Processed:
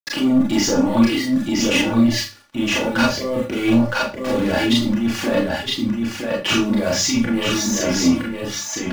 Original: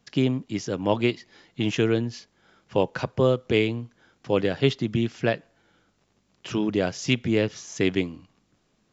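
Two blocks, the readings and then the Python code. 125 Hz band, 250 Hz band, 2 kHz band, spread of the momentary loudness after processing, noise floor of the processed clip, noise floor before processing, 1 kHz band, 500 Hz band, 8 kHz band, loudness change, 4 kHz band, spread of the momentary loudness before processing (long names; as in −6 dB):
+1.5 dB, +10.0 dB, +9.0 dB, 7 LU, −32 dBFS, −69 dBFS, +8.0 dB, +2.5 dB, can't be measured, +6.5 dB, +11.5 dB, 11 LU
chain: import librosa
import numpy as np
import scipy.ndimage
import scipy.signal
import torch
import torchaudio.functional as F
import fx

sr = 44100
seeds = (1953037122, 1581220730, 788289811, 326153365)

y = fx.over_compress(x, sr, threshold_db=-32.0, ratio=-1.0)
y = fx.high_shelf(y, sr, hz=2500.0, db=-3.5)
y = np.where(np.abs(y) >= 10.0 ** (-40.5 / 20.0), y, 0.0)
y = scipy.signal.sosfilt(scipy.signal.butter(2, 72.0, 'highpass', fs=sr, output='sos'), y)
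y = y + 10.0 ** (-4.0 / 20.0) * np.pad(y, (int(965 * sr / 1000.0), 0))[:len(y)]
y = fx.leveller(y, sr, passes=3)
y = fx.dereverb_blind(y, sr, rt60_s=1.0)
y = fx.high_shelf(y, sr, hz=6200.0, db=-6.0)
y = fx.hum_notches(y, sr, base_hz=50, count=4)
y = y + 0.57 * np.pad(y, (int(3.5 * sr / 1000.0), 0))[:len(y)]
y = fx.rev_schroeder(y, sr, rt60_s=0.31, comb_ms=27, drr_db=-3.0)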